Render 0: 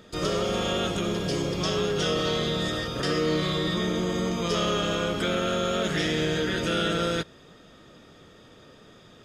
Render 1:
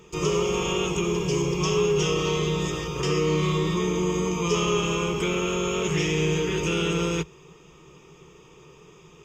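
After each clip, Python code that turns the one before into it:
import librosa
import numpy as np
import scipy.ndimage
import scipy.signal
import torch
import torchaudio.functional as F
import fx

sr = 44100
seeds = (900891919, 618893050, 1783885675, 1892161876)

y = fx.ripple_eq(x, sr, per_octave=0.74, db=16)
y = y * 10.0 ** (-1.5 / 20.0)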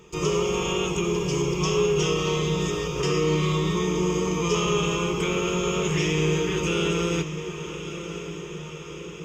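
y = fx.echo_diffused(x, sr, ms=1096, feedback_pct=62, wet_db=-11.0)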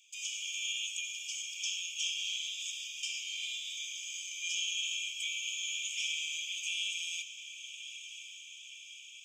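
y = scipy.signal.sosfilt(scipy.signal.cheby1(6, 9, 2300.0, 'highpass', fs=sr, output='sos'), x)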